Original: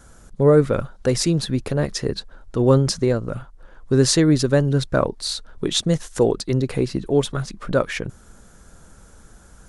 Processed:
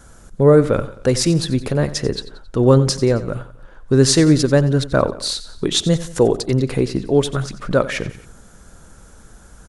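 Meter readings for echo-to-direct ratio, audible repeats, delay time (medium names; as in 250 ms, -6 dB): -14.5 dB, 3, 90 ms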